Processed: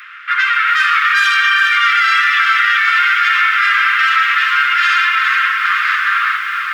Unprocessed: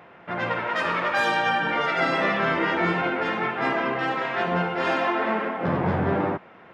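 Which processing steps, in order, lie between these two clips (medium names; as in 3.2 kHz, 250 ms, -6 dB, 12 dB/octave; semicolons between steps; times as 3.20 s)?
steep high-pass 1.2 kHz 96 dB/octave; echo that smears into a reverb 977 ms, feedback 50%, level -12 dB; loudness maximiser +23.5 dB; bit-crushed delay 411 ms, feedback 35%, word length 6-bit, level -7 dB; trim -4 dB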